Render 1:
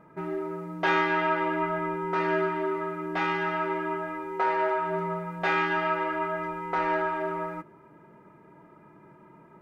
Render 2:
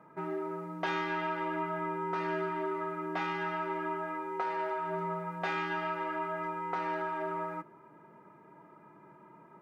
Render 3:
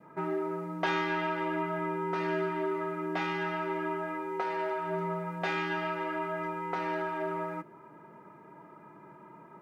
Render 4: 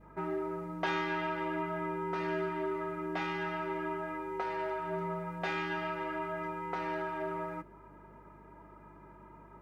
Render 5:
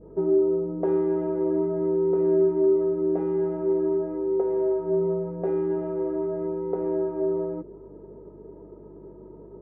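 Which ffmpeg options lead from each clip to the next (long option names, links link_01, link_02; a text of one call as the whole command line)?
ffmpeg -i in.wav -filter_complex "[0:a]highpass=120,equalizer=frequency=1000:width_type=o:width=1.2:gain=4.5,acrossover=split=300|3000[link_01][link_02][link_03];[link_02]acompressor=threshold=-28dB:ratio=6[link_04];[link_01][link_04][link_03]amix=inputs=3:normalize=0,volume=-4.5dB" out.wav
ffmpeg -i in.wav -af "adynamicequalizer=threshold=0.00501:dfrequency=1100:dqfactor=1.3:tfrequency=1100:tqfactor=1.3:attack=5:release=100:ratio=0.375:range=2.5:mode=cutabove:tftype=bell,volume=4dB" out.wav
ffmpeg -i in.wav -af "aeval=exprs='val(0)+0.00158*(sin(2*PI*50*n/s)+sin(2*PI*2*50*n/s)/2+sin(2*PI*3*50*n/s)/3+sin(2*PI*4*50*n/s)/4+sin(2*PI*5*50*n/s)/5)':channel_layout=same,volume=-3dB" out.wav
ffmpeg -i in.wav -af "lowpass=frequency=440:width_type=q:width=4.8,volume=6dB" out.wav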